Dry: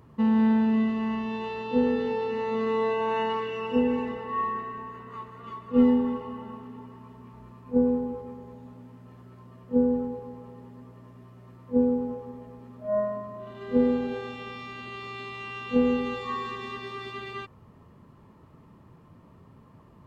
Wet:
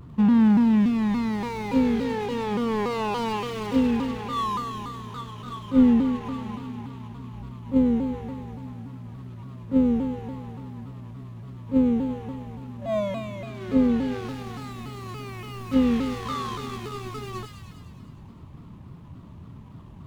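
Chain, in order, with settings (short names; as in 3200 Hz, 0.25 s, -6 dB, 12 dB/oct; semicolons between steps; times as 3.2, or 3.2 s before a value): median filter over 25 samples; bell 480 Hz -7 dB 0.77 oct; in parallel at 0 dB: compressor, threshold -34 dBFS, peak gain reduction 16 dB; on the sum: low shelf 170 Hz +8 dB; on a send: thin delay 0.102 s, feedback 71%, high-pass 1800 Hz, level -4 dB; on the sum: shaped vibrato saw down 3.5 Hz, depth 160 cents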